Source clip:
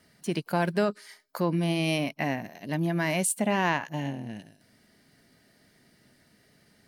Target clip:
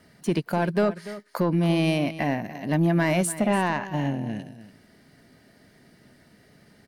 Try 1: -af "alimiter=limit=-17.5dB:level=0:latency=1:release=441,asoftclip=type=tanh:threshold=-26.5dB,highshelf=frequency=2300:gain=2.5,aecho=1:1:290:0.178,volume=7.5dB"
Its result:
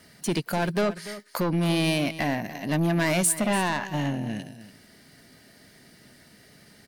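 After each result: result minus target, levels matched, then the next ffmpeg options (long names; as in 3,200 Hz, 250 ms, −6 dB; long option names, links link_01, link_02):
soft clipping: distortion +9 dB; 4,000 Hz band +5.5 dB
-af "alimiter=limit=-17.5dB:level=0:latency=1:release=441,asoftclip=type=tanh:threshold=-19dB,highshelf=frequency=2300:gain=2.5,aecho=1:1:290:0.178,volume=7.5dB"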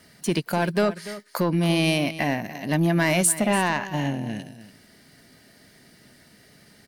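4,000 Hz band +5.0 dB
-af "alimiter=limit=-17.5dB:level=0:latency=1:release=441,asoftclip=type=tanh:threshold=-19dB,highshelf=frequency=2300:gain=-7,aecho=1:1:290:0.178,volume=7.5dB"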